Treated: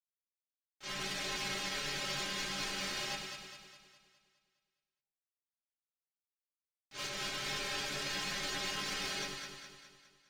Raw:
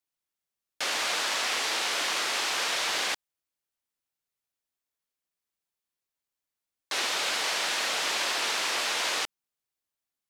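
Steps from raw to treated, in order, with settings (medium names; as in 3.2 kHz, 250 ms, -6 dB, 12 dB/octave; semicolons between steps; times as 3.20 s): low-pass 7 kHz 24 dB/octave; gate -27 dBFS, range -28 dB; peak limiter -28.5 dBFS, peak gain reduction 5 dB; waveshaping leveller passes 2; vibrato 4.3 Hz 30 cents; inharmonic resonator 110 Hz, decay 0.36 s, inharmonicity 0.008; ring modulator 890 Hz; on a send: echo whose repeats swap between lows and highs 103 ms, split 860 Hz, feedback 70%, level -2 dB; on the sum: trim +8.5 dB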